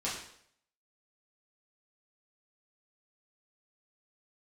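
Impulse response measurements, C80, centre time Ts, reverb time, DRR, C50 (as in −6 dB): 7.0 dB, 43 ms, 0.65 s, −8.5 dB, 4.0 dB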